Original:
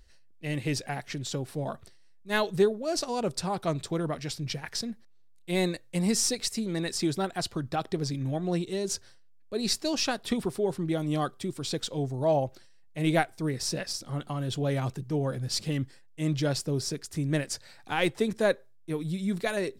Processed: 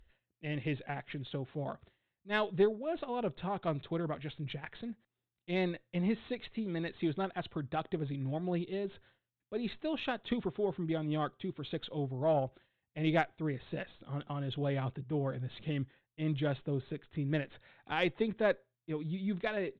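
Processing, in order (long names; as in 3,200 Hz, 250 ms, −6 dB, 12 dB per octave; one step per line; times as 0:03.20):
downsampling to 8,000 Hz
harmonic generator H 4 −29 dB, 7 −41 dB, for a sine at −10.5 dBFS
level −5 dB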